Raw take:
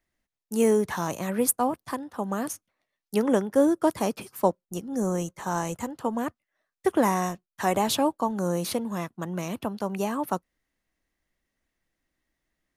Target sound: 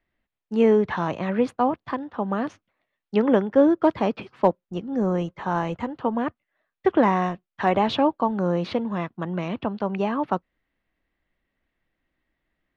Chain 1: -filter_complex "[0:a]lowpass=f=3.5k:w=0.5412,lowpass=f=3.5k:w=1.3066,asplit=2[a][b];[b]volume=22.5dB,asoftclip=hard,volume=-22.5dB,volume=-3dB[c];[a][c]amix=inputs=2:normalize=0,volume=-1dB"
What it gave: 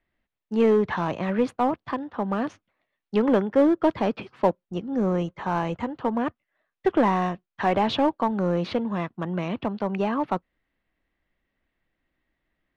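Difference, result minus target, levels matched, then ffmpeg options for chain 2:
overloaded stage: distortion +22 dB
-filter_complex "[0:a]lowpass=f=3.5k:w=0.5412,lowpass=f=3.5k:w=1.3066,asplit=2[a][b];[b]volume=11.5dB,asoftclip=hard,volume=-11.5dB,volume=-3dB[c];[a][c]amix=inputs=2:normalize=0,volume=-1dB"

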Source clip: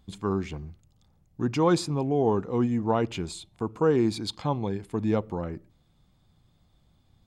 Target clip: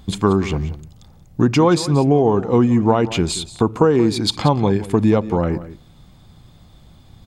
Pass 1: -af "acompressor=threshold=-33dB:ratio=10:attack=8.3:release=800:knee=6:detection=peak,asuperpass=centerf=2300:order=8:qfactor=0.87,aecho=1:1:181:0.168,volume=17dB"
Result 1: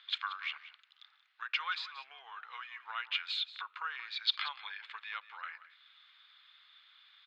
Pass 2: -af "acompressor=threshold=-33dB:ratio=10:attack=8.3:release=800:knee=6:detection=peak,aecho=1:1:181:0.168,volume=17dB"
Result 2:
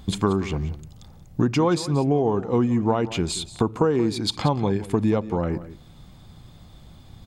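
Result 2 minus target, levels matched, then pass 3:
compressor: peak gain reduction +6.5 dB
-af "acompressor=threshold=-26dB:ratio=10:attack=8.3:release=800:knee=6:detection=peak,aecho=1:1:181:0.168,volume=17dB"

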